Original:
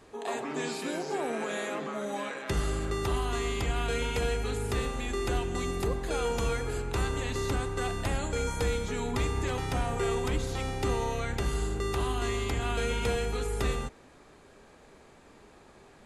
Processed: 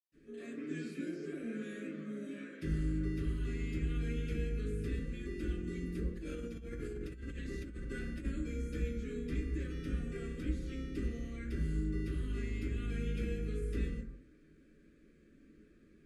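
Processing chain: Butterworth band-stop 860 Hz, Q 0.59; treble shelf 2.2 kHz -9.5 dB; hum notches 50/100 Hz; reverberation RT60 0.60 s, pre-delay 117 ms; 6.17–8.25 s: compressor with a negative ratio -40 dBFS, ratio -1; trim -2 dB

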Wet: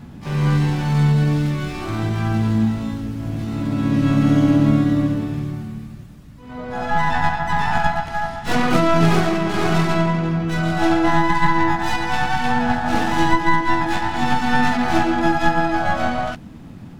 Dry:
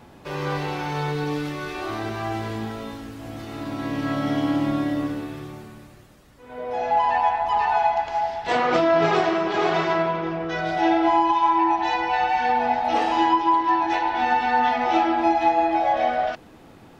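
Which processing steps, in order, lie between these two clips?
tracing distortion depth 0.11 ms; harmony voices +7 st -15 dB, +12 st -8 dB; resonant low shelf 300 Hz +12 dB, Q 1.5

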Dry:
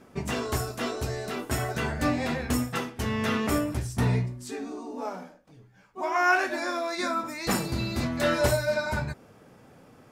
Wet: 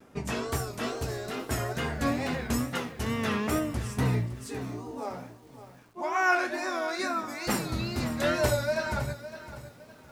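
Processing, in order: vibrato 2.3 Hz 99 cents; bit-crushed delay 560 ms, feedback 35%, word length 8-bit, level -13 dB; trim -2 dB

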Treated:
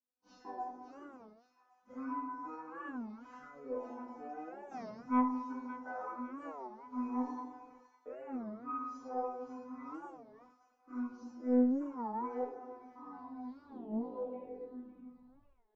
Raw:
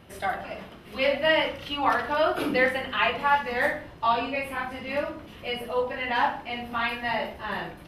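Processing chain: tape stop on the ending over 1.67 s; gate -41 dBFS, range -35 dB; tilt EQ +1.5 dB/octave; compression, threshold -25 dBFS, peak gain reduction 9 dB; high-order bell 980 Hz +12.5 dB 2.9 oct; feedback comb 500 Hz, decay 0.17 s, harmonics all, mix 100%; Chebyshev shaper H 3 -16 dB, 4 -18 dB, 6 -31 dB, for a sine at -1 dBFS; on a send: feedback echo behind a high-pass 278 ms, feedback 54%, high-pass 3.7 kHz, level -9 dB; on the sum: speed mistake 15 ips tape played at 7.5 ips; warped record 33 1/3 rpm, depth 250 cents; trim -3.5 dB

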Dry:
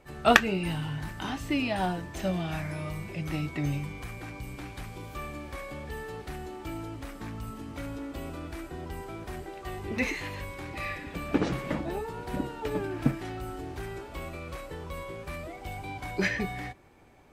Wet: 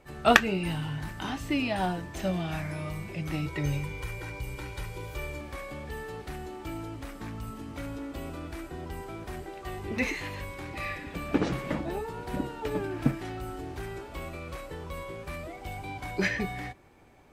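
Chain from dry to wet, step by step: 3.46–5.41 s: comb 2.1 ms, depth 86%

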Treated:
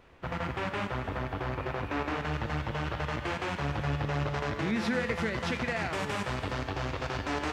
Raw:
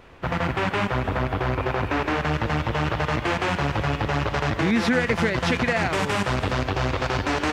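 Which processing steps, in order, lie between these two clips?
feedback comb 72 Hz, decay 1.7 s, harmonics all, mix 70%

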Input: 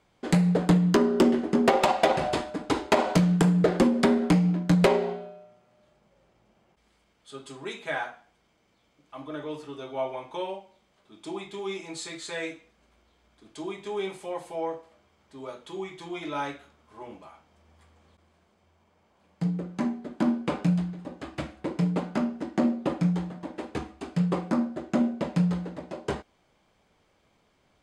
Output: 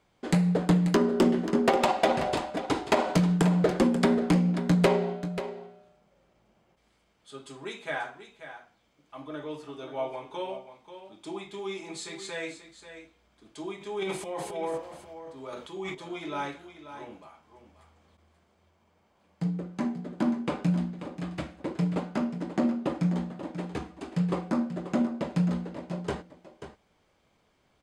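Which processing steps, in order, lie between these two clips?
13.78–15.95 s: transient shaper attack -1 dB, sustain +11 dB; delay 536 ms -11.5 dB; trim -2 dB

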